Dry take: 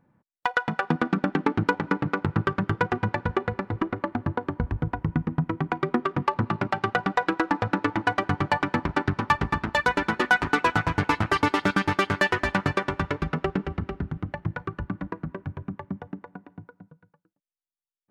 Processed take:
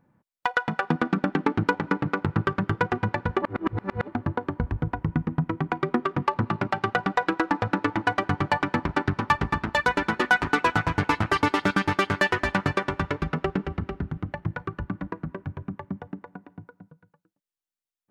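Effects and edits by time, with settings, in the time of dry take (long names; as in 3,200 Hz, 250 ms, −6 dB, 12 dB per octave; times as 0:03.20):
0:03.42–0:04.07: reverse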